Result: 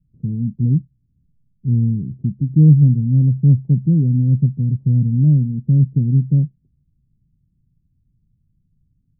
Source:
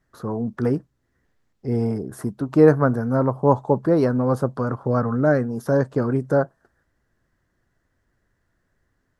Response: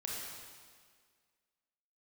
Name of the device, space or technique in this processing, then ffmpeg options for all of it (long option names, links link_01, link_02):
the neighbour's flat through the wall: -af "lowpass=frequency=200:width=0.5412,lowpass=frequency=200:width=1.3066,equalizer=frequency=150:width_type=o:width=0.63:gain=6.5,volume=7.5dB"